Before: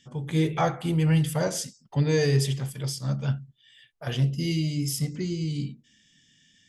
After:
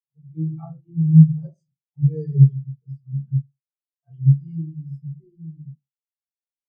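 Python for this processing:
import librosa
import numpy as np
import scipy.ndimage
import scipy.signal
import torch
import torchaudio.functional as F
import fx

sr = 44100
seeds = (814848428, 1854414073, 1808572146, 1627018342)

y = np.sign(x) * np.maximum(np.abs(x) - 10.0 ** (-48.0 / 20.0), 0.0)
y = fx.room_shoebox(y, sr, seeds[0], volume_m3=160.0, walls='furnished', distance_m=3.7)
y = fx.spectral_expand(y, sr, expansion=2.5)
y = y * 10.0 ** (-2.0 / 20.0)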